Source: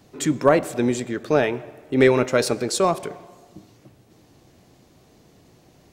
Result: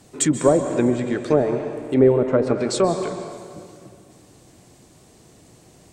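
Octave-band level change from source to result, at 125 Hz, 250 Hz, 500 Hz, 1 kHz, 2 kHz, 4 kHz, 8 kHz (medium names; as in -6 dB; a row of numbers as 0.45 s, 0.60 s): +2.5 dB, +2.5 dB, +1.5 dB, -2.5 dB, -7.5 dB, -3.0 dB, +3.0 dB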